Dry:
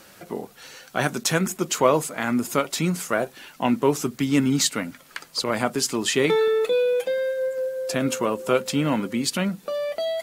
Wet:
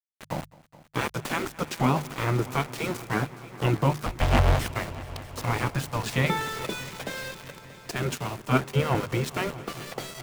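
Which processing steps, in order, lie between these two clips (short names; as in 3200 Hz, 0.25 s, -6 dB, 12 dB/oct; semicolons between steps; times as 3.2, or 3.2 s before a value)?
4.06–4.7 cycle switcher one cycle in 3, inverted; low shelf 88 Hz -5.5 dB; spectral gate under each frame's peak -10 dB weak; in parallel at +1 dB: compressor, threshold -38 dBFS, peak gain reduction 17.5 dB; on the sum: RIAA curve playback; sample gate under -32 dBFS; notches 50/100/150 Hz; on a send: multi-head echo 0.211 s, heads all three, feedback 69%, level -22.5 dB; 7.91–8.95 on the sum: three-band expander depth 100%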